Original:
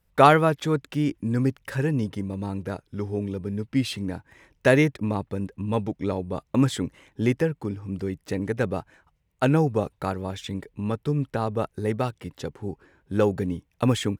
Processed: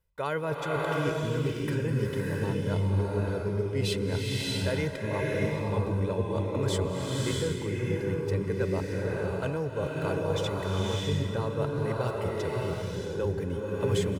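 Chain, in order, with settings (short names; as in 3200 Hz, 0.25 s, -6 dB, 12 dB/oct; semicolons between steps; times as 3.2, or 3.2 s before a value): comb 2 ms, depth 58%; reverse; compressor 5:1, threshold -30 dBFS, peak gain reduction 18.5 dB; reverse; bloom reverb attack 0.64 s, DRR -3.5 dB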